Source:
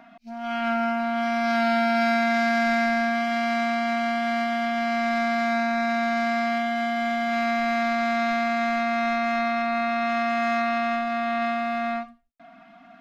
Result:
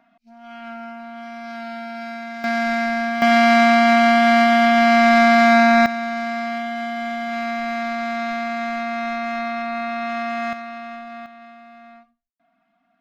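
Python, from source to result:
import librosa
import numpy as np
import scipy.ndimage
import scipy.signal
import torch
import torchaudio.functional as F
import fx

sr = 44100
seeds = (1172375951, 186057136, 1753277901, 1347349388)

y = fx.gain(x, sr, db=fx.steps((0.0, -10.0), (2.44, 1.0), (3.22, 11.0), (5.86, -1.0), (10.53, -9.0), (11.26, -17.5)))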